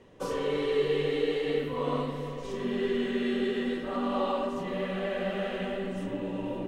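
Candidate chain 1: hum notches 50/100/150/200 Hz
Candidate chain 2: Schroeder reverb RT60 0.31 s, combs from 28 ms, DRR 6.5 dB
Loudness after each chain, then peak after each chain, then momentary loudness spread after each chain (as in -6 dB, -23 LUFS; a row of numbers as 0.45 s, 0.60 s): -31.0 LUFS, -30.0 LUFS; -16.5 dBFS, -15.0 dBFS; 7 LU, 6 LU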